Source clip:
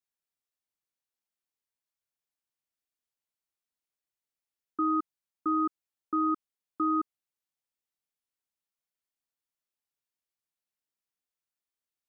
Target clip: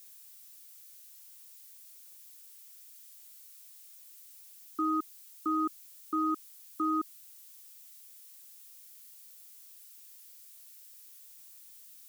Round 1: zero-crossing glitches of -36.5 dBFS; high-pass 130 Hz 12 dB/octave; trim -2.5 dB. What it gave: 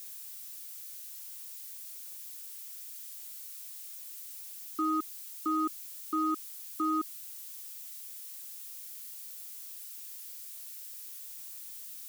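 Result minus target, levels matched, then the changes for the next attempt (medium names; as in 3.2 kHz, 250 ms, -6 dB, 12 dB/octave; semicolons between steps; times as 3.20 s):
zero-crossing glitches: distortion +8 dB
change: zero-crossing glitches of -45 dBFS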